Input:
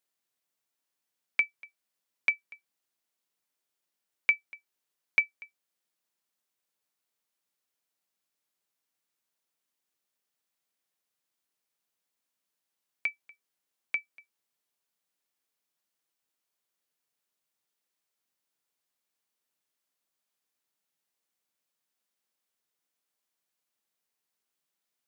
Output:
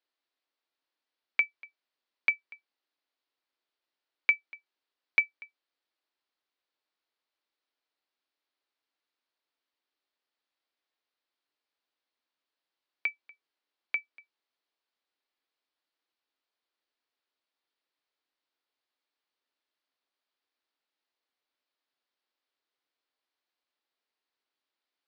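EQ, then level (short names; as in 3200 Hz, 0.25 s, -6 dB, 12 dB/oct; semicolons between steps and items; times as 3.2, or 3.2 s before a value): elliptic band-pass 270–4500 Hz; +1.0 dB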